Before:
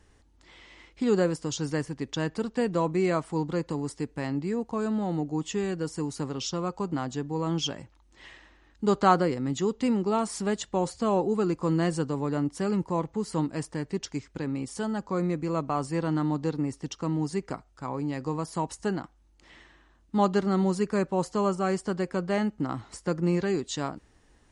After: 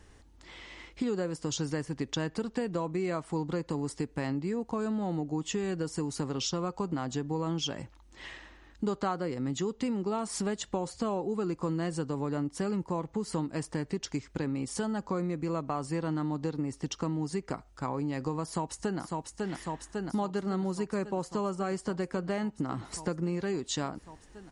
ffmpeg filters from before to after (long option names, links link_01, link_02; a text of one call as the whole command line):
ffmpeg -i in.wav -filter_complex "[0:a]asplit=2[link_01][link_02];[link_02]afade=type=in:start_time=18.43:duration=0.01,afade=type=out:start_time=19.01:duration=0.01,aecho=0:1:550|1100|1650|2200|2750|3300|3850|4400|4950|5500|6050|6600:0.421697|0.337357|0.269886|0.215909|0.172727|0.138182|0.110545|0.0884362|0.0707489|0.0565991|0.0452793|0.0362235[link_03];[link_01][link_03]amix=inputs=2:normalize=0,acompressor=threshold=-33dB:ratio=6,volume=4dB" out.wav